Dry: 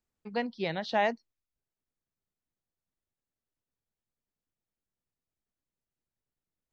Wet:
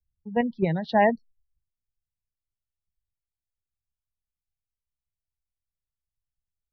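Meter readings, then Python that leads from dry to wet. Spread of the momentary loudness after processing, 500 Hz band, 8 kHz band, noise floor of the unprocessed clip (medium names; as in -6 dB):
8 LU, +7.0 dB, no reading, under -85 dBFS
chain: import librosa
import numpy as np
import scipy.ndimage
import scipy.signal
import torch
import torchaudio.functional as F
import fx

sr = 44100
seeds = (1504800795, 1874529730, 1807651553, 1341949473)

p1 = fx.spec_gate(x, sr, threshold_db=-20, keep='strong')
p2 = fx.env_lowpass_down(p1, sr, base_hz=2900.0, full_db=-31.5)
p3 = fx.peak_eq(p2, sr, hz=170.0, db=3.0, octaves=0.31)
p4 = fx.level_steps(p3, sr, step_db=15)
p5 = p3 + (p4 * librosa.db_to_amplitude(-1.5))
p6 = fx.low_shelf(p5, sr, hz=230.0, db=11.5)
y = fx.band_widen(p6, sr, depth_pct=70)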